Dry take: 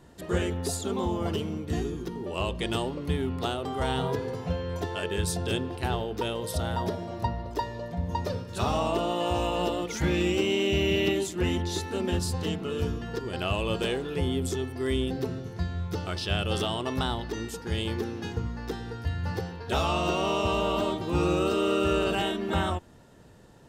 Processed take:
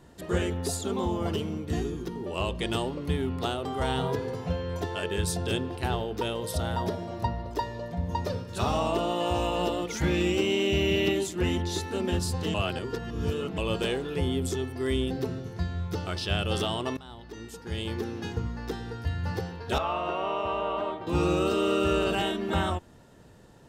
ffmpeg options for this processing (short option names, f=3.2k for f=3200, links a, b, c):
-filter_complex "[0:a]asettb=1/sr,asplit=3[a][b][c];[a]atrim=end=19.784[d];[b]atrim=start=19.78:end=21.07,asetpts=PTS-STARTPTS,afade=t=in:d=0.004:c=qsin,afade=t=out:st=1.286:d=0.004:c=qsin,acrossover=split=450 2600:gain=0.251 1 0.0708[e][f][g];[e][f][g]amix=inputs=3:normalize=0[h];[c]atrim=start=21.066[i];[d][h]acrossfade=d=0.004:c1=hsin:c2=qsin[j];[j][i]acrossfade=d=0.004:c1=qsin:c2=hsin,asplit=4[k][l][m][n];[k]atrim=end=12.542[o];[l]atrim=start=12.538:end=13.582,asetpts=PTS-STARTPTS,areverse[p];[m]atrim=start=13.578:end=16.97,asetpts=PTS-STARTPTS,afade=t=out:st=3.388:d=0.004:c=hsin:silence=0.0707946[q];[n]atrim=start=16.97,asetpts=PTS-STARTPTS,afade=t=in:d=1.21:silence=0.0707946[r];[o][p]acrossfade=d=0.004:c1=hsin:c2=hsin[s];[q][r]concat=n=2:v=0:a=1[t];[s][t]acrossfade=d=0.004:c1=hsin:c2=hsin"